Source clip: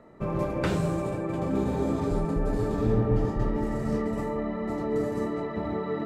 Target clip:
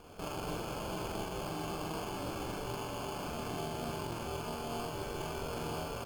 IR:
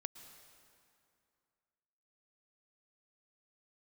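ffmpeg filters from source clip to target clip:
-filter_complex "[0:a]highpass=f=54:w=0.5412,highpass=f=54:w=1.3066,afftfilt=real='re*lt(hypot(re,im),0.158)':imag='im*lt(hypot(re,im),0.158)':win_size=1024:overlap=0.75,lowpass=f=2100:p=1,adynamicequalizer=threshold=0.00282:dfrequency=950:dqfactor=1.5:tfrequency=950:tqfactor=1.5:attack=5:release=100:ratio=0.375:range=2:mode=cutabove:tftype=bell,alimiter=level_in=2.37:limit=0.0631:level=0:latency=1:release=13,volume=0.422,acrossover=split=610[s0][s1];[s0]acompressor=mode=upward:threshold=0.00178:ratio=2.5[s2];[s2][s1]amix=inputs=2:normalize=0,aeval=exprs='val(0)*sin(2*PI*220*n/s)':c=same,asetrate=46722,aresample=44100,atempo=0.943874,acrusher=samples=23:mix=1:aa=0.000001,asplit=2[s3][s4];[s4]adelay=43,volume=0.794[s5];[s3][s5]amix=inputs=2:normalize=0,volume=1.12" -ar 48000 -c:a libopus -b:a 256k

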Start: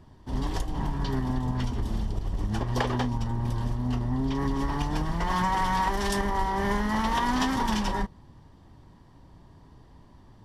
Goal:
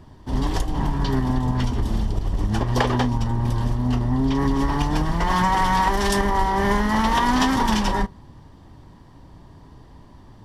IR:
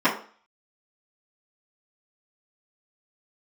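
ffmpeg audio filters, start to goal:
-filter_complex "[0:a]asplit=2[s0][s1];[1:a]atrim=start_sample=2205[s2];[s1][s2]afir=irnorm=-1:irlink=0,volume=0.00841[s3];[s0][s3]amix=inputs=2:normalize=0,volume=2.11"

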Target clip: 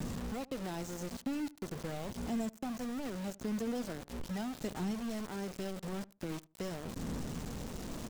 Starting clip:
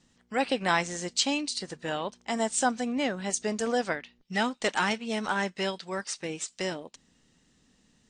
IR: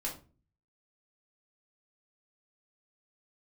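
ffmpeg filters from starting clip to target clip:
-filter_complex "[0:a]aeval=exprs='val(0)+0.5*0.0316*sgn(val(0))':c=same,firequalizer=gain_entry='entry(140,0);entry(490,-7);entry(2000,-21)':delay=0.05:min_phase=1,acrossover=split=200|810|3100[s0][s1][s2][s3];[s0]acompressor=threshold=0.00794:ratio=4[s4];[s1]acompressor=threshold=0.00708:ratio=4[s5];[s2]acompressor=threshold=0.00141:ratio=4[s6];[s3]acompressor=threshold=0.002:ratio=4[s7];[s4][s5][s6][s7]amix=inputs=4:normalize=0,lowpass=f=7800:t=q:w=1.5,aphaser=in_gain=1:out_gain=1:delay=4.5:decay=0.3:speed=0.42:type=triangular,aeval=exprs='val(0)*gte(abs(val(0)),0.00841)':c=same,asplit=2[s8][s9];[s9]adelay=77,lowpass=f=890:p=1,volume=0.1,asplit=2[s10][s11];[s11]adelay=77,lowpass=f=890:p=1,volume=0.24[s12];[s8][s10][s12]amix=inputs=3:normalize=0,volume=1.12"

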